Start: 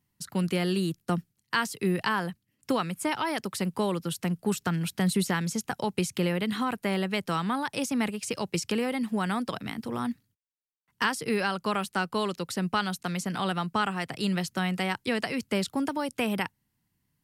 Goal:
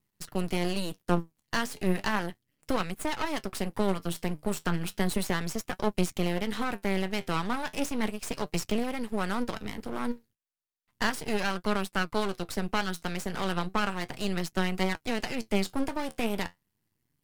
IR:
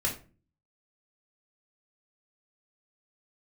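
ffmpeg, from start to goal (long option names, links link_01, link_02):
-af "flanger=delay=4.6:depth=8.8:regen=61:speed=0.34:shape=triangular,aeval=exprs='max(val(0),0)':channel_layout=same,volume=6dB"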